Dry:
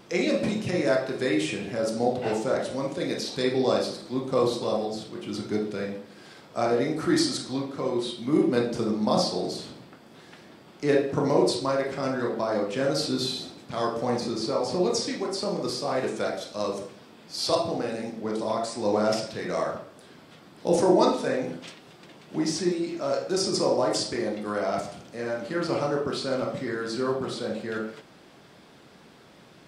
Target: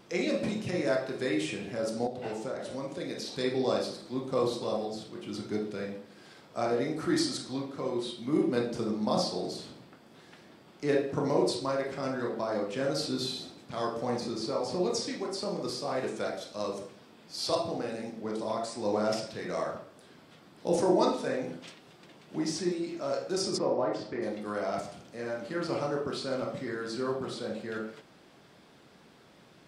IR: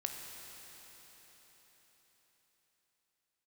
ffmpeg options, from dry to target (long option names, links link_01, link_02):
-filter_complex "[0:a]asettb=1/sr,asplit=3[link_01][link_02][link_03];[link_01]atrim=end=2.064[link_04];[link_02]atrim=start=2.06:end=3.38,asetpts=PTS-STARTPTS,afade=type=in:duration=0.004:curve=qsin,afade=type=out:start_time=1.316:duration=0.004:curve=qsin,acompressor=threshold=-27dB:ratio=6[link_05];[link_03]atrim=start=3.376[link_06];[link_04][link_05]acrossfade=duration=0.004:curve1=hsin:curve2=qsin[link_07];[link_07][link_06]acrossfade=duration=0.004:curve1=qsin:curve2=hsin,asplit=3[link_08][link_09][link_10];[link_08]afade=type=out:start_time=23.57:duration=0.02[link_11];[link_09]highpass=100,lowpass=2200,afade=type=in:start_time=23.57:duration=0.02,afade=type=out:start_time=24.21:duration=0.02[link_12];[link_10]afade=type=in:start_time=24.21:duration=0.02[link_13];[link_11][link_12][link_13]amix=inputs=3:normalize=0,volume=-5dB"